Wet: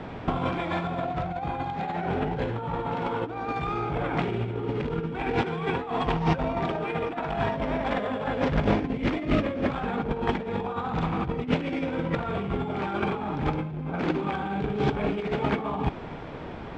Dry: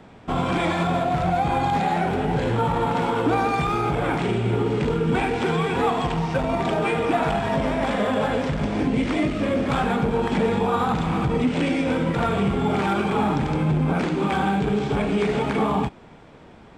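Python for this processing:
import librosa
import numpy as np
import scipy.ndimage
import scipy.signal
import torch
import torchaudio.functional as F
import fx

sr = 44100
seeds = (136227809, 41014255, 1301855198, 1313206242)

y = fx.peak_eq(x, sr, hz=210.0, db=-4.0, octaves=0.3)
y = fx.over_compress(y, sr, threshold_db=-28.0, ratio=-0.5)
y = fx.air_absorb(y, sr, metres=150.0)
y = y * 10.0 ** (2.5 / 20.0)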